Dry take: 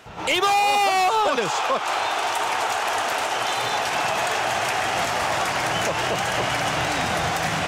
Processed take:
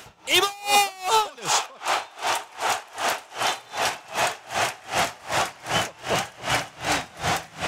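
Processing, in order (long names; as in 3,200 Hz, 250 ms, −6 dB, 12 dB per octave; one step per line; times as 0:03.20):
high-shelf EQ 3,800 Hz +11 dB, from 0:01.66 +4 dB
tremolo with a sine in dB 2.6 Hz, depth 27 dB
level +2 dB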